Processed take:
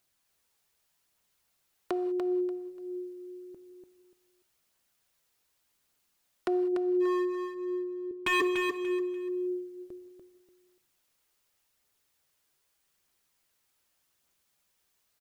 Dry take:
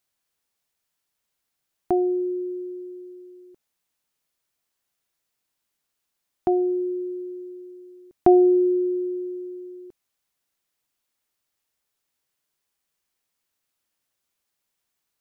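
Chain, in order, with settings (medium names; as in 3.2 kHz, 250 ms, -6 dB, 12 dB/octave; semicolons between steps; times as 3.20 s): compression 12:1, threshold -30 dBFS, peak gain reduction 19.5 dB; 6.72–8.40 s: resonant low-pass 620 Hz -> 370 Hz, resonance Q 6.3; phaser 0.84 Hz, delay 2.6 ms, feedback 29%; wavefolder -25 dBFS; feedback delay 292 ms, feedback 26%, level -6 dB; gated-style reverb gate 220 ms flat, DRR 11.5 dB; trim +3 dB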